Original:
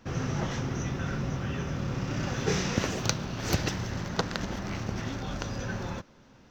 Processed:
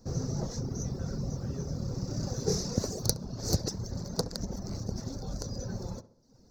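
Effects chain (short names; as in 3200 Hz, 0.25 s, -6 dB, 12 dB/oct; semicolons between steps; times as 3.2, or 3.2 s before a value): tracing distortion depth 0.066 ms; EQ curve 220 Hz 0 dB, 320 Hz -3 dB, 460 Hz +2 dB, 3100 Hz -24 dB, 4400 Hz +4 dB; reverb removal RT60 0.82 s; low shelf 63 Hz +5.5 dB; on a send: tape echo 67 ms, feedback 53%, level -12.5 dB, low-pass 1300 Hz; on the sum: gain -1 dB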